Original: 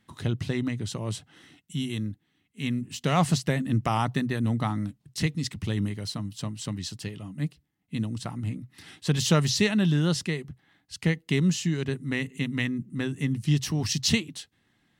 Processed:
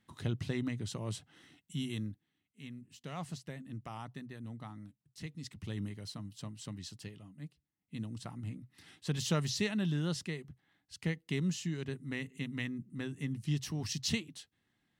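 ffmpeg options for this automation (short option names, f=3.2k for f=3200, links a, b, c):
-af "volume=8dB,afade=t=out:st=1.98:d=0.71:silence=0.251189,afade=t=in:st=5.19:d=0.57:silence=0.398107,afade=t=out:st=7.06:d=0.35:silence=0.501187,afade=t=in:st=7.41:d=0.75:silence=0.446684"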